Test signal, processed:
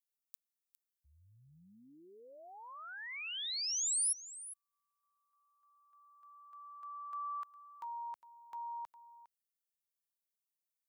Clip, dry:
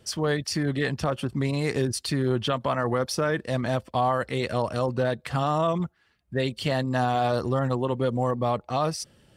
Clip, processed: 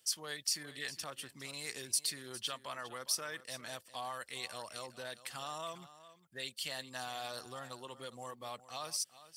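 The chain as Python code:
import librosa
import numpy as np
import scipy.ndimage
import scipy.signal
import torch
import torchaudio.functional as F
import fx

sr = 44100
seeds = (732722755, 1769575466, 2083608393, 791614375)

y = scipy.signal.sosfilt(scipy.signal.butter(2, 76.0, 'highpass', fs=sr, output='sos'), x)
y = librosa.effects.preemphasis(y, coef=0.97, zi=[0.0])
y = y + 10.0 ** (-15.5 / 20.0) * np.pad(y, (int(407 * sr / 1000.0), 0))[:len(y)]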